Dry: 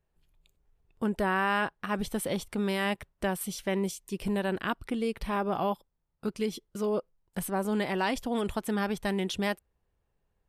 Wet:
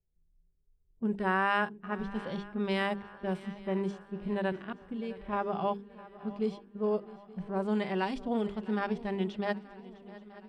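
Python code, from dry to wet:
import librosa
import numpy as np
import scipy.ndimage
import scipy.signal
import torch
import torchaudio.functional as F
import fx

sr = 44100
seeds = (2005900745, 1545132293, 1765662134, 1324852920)

p1 = scipy.signal.sosfilt(scipy.signal.butter(2, 7200.0, 'lowpass', fs=sr, output='sos'), x)
p2 = fx.hum_notches(p1, sr, base_hz=50, count=9)
p3 = fx.env_lowpass(p2, sr, base_hz=300.0, full_db=-25.0)
p4 = fx.hpss(p3, sr, part='percussive', gain_db=-15)
p5 = fx.level_steps(p4, sr, step_db=12, at=(4.52, 5.33))
y = p5 + fx.echo_swing(p5, sr, ms=876, ratio=3, feedback_pct=53, wet_db=-19, dry=0)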